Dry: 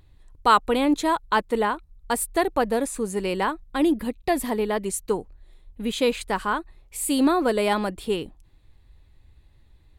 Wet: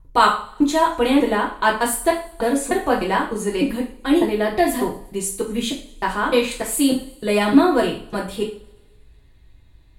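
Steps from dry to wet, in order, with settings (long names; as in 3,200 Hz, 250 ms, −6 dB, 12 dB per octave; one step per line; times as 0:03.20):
slices reordered back to front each 301 ms, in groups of 2
delay with a high-pass on its return 120 ms, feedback 67%, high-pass 4,700 Hz, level −22 dB
coupled-rooms reverb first 0.4 s, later 1.5 s, from −25 dB, DRR −3 dB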